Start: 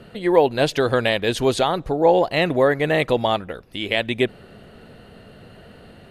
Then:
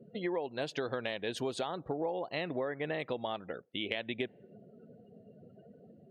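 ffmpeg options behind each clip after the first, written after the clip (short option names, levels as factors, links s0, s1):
-af "highpass=140,afftdn=nr=32:nf=-39,acompressor=threshold=0.0562:ratio=12,volume=0.473"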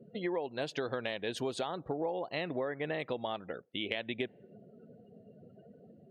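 -af anull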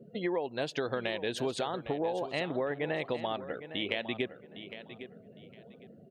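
-af "aecho=1:1:808|1616|2424:0.237|0.0522|0.0115,volume=1.33"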